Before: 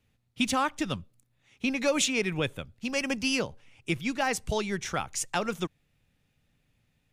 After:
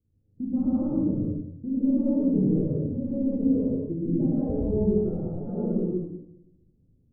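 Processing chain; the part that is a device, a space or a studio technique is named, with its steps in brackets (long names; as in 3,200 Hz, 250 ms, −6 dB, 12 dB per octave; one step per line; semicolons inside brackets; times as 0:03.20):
next room (low-pass filter 410 Hz 24 dB per octave; convolution reverb RT60 0.80 s, pre-delay 111 ms, DRR −6.5 dB)
0:01.90–0:02.50: comb filter 1.1 ms, depth 52%
reverb whose tail is shaped and stops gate 250 ms flat, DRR −5 dB
level −4 dB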